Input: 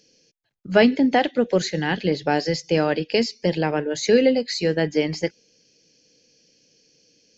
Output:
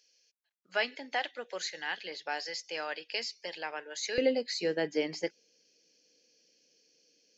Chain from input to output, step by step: high-pass 970 Hz 12 dB/octave, from 4.18 s 310 Hz; trim -8 dB

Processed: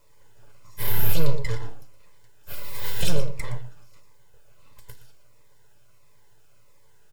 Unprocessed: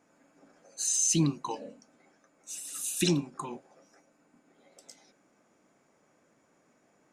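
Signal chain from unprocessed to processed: full-wave rectifier; peaking EQ 120 Hz +11.5 dB 0.21 oct; band-stop 6.1 kHz, Q 13; delay 118 ms -14 dB; in parallel at -3 dB: hard clipper -27.5 dBFS, distortion -7 dB; on the sum: word length cut 12-bit, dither triangular; reverberation RT60 0.35 s, pre-delay 7 ms, DRR 7.5 dB; Shepard-style phaser falling 1.5 Hz

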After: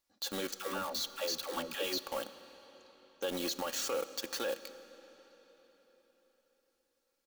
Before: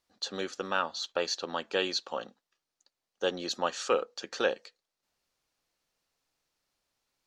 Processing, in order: in parallel at -7 dB: companded quantiser 2-bit; on the sum: treble shelf 8.5 kHz +10.5 dB; comb 3.6 ms, depth 41%; peak limiter -20.5 dBFS, peak gain reduction 9 dB; 0.54–1.98 s: phase dispersion lows, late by 129 ms, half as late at 440 Hz; on a send at -13 dB: reverberation RT60 4.4 s, pre-delay 5 ms; on the sum: trim -6.5 dB

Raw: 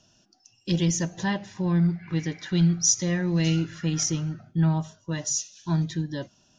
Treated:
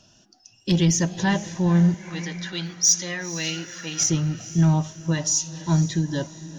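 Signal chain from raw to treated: 1.94–4.01 s: high-pass 1.2 kHz 6 dB/octave; saturation -14.5 dBFS, distortion -22 dB; wow and flutter 29 cents; echo that smears into a reverb 484 ms, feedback 44%, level -15 dB; trim +5.5 dB

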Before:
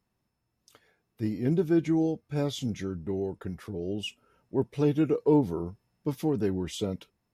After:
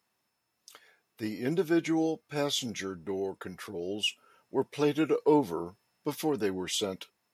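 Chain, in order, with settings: high-pass 1 kHz 6 dB/octave; trim +7.5 dB

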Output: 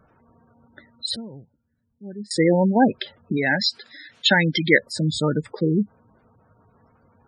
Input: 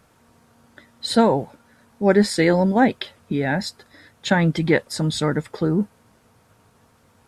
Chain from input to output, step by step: 3.37–4.79 s: frequency weighting D; spectral gate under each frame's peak -15 dB strong; 1.16–2.31 s: amplifier tone stack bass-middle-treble 10-0-1

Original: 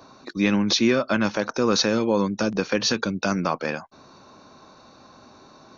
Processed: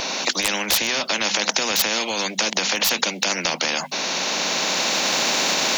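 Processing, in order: recorder AGC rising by 17 dB/s; hum notches 50/100/150/200/250 Hz; in parallel at -1 dB: compression 6:1, threshold -32 dBFS, peak gain reduction 16 dB; on the sum: steep high-pass 170 Hz 72 dB/octave; resonant high shelf 1.7 kHz +13 dB, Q 3; overload inside the chain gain -2 dB; high-order bell 700 Hz +15.5 dB 1.2 oct; loudness maximiser +2.5 dB; spectrum-flattening compressor 4:1; trim -1 dB

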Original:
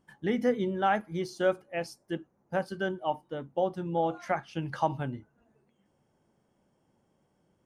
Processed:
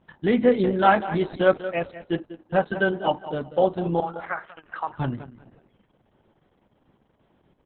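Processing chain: 4.00–4.99 s: band-pass filter 1.4 kHz, Q 2.4; feedback delay 193 ms, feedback 25%, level -13 dB; 2.19–2.81 s: gate -59 dBFS, range -18 dB; trim +8.5 dB; Opus 6 kbps 48 kHz

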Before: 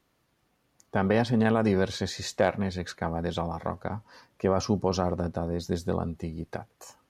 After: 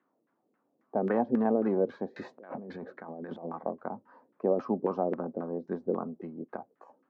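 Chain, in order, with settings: LFO low-pass saw down 3.7 Hz 380–1700 Hz; 2.16–3.45 s: compressor with a negative ratio -35 dBFS, ratio -1; ladder high-pass 200 Hz, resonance 40%; trim +1 dB

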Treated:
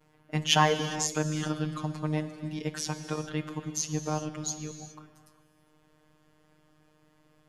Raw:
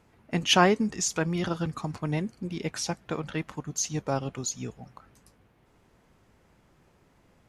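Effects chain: vibrato 0.41 Hz 41 cents; robot voice 153 Hz; gated-style reverb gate 440 ms flat, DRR 9 dB

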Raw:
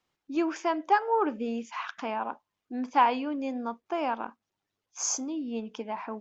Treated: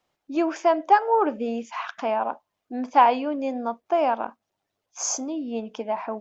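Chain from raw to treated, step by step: peaking EQ 640 Hz +9 dB 0.66 oct; trim +2.5 dB

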